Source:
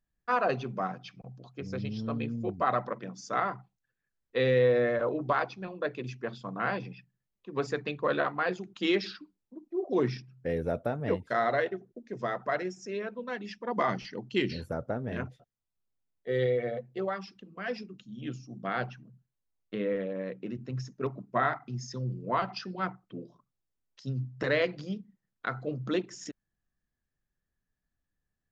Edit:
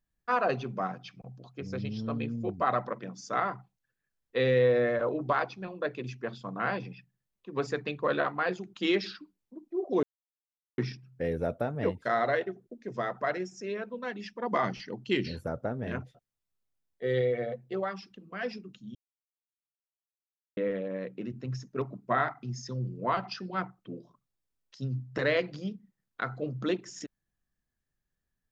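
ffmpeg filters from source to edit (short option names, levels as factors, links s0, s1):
-filter_complex "[0:a]asplit=4[s0][s1][s2][s3];[s0]atrim=end=10.03,asetpts=PTS-STARTPTS,afade=t=out:st=10.026:d=0.004:c=hsin,apad=pad_dur=0.75[s4];[s1]atrim=start=10.03:end=18.2,asetpts=PTS-STARTPTS,afade=t=in:d=0.004:c=hsin,afade=t=out:st=8.166:d=0.004:c=hsin[s5];[s2]atrim=start=18.2:end=19.82,asetpts=PTS-STARTPTS,volume=0[s6];[s3]atrim=start=19.82,asetpts=PTS-STARTPTS,afade=t=in:d=0.004:c=hsin[s7];[s4][s5][s6][s7]concat=n=4:v=0:a=1"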